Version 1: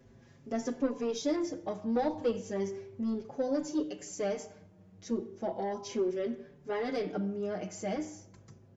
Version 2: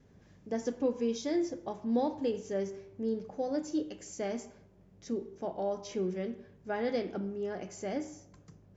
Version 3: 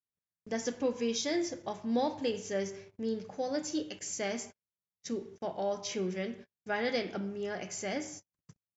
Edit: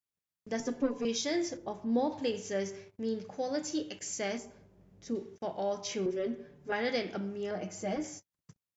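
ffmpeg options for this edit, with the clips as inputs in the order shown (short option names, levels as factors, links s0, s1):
-filter_complex "[0:a]asplit=3[s0][s1][s2];[1:a]asplit=2[s3][s4];[2:a]asplit=6[s5][s6][s7][s8][s9][s10];[s5]atrim=end=0.602[s11];[s0]atrim=start=0.598:end=1.052[s12];[s6]atrim=start=1.048:end=1.572[s13];[s3]atrim=start=1.568:end=2.122[s14];[s7]atrim=start=2.118:end=4.382[s15];[s4]atrim=start=4.378:end=5.152[s16];[s8]atrim=start=5.148:end=6.062[s17];[s1]atrim=start=6.058:end=6.722[s18];[s9]atrim=start=6.718:end=7.512[s19];[s2]atrim=start=7.508:end=8.042[s20];[s10]atrim=start=8.038[s21];[s11][s12]acrossfade=d=0.004:c1=hsin:c2=hsin[s22];[s22][s13]acrossfade=d=0.004:c1=hsin:c2=hsin[s23];[s23][s14]acrossfade=d=0.004:c1=hsin:c2=hsin[s24];[s24][s15]acrossfade=d=0.004:c1=hsin:c2=hsin[s25];[s25][s16]acrossfade=d=0.004:c1=hsin:c2=hsin[s26];[s26][s17]acrossfade=d=0.004:c1=hsin:c2=hsin[s27];[s27][s18]acrossfade=d=0.004:c1=hsin:c2=hsin[s28];[s28][s19]acrossfade=d=0.004:c1=hsin:c2=hsin[s29];[s29][s20]acrossfade=d=0.004:c1=hsin:c2=hsin[s30];[s30][s21]acrossfade=d=0.004:c1=hsin:c2=hsin"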